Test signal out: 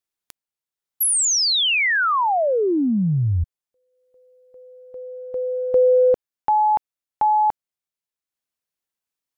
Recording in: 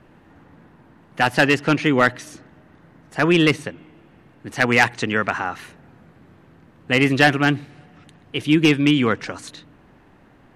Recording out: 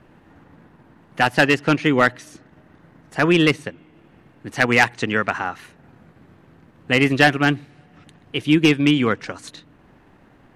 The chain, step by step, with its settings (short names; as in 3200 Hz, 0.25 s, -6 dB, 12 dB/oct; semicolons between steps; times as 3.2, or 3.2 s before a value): transient shaper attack +1 dB, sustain -4 dB